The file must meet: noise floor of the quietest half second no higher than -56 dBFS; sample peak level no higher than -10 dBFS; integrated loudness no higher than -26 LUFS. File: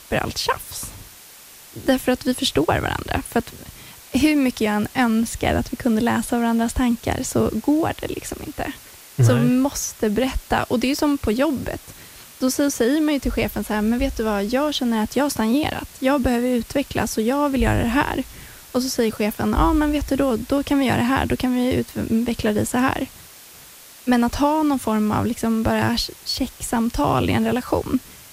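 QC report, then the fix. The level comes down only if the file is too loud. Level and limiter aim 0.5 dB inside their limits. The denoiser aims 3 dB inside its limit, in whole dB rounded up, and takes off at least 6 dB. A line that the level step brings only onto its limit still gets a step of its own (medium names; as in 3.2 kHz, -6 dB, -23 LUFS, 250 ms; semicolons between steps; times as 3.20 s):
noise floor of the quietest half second -44 dBFS: fail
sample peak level -6.0 dBFS: fail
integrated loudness -21.0 LUFS: fail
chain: noise reduction 10 dB, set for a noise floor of -44 dBFS; trim -5.5 dB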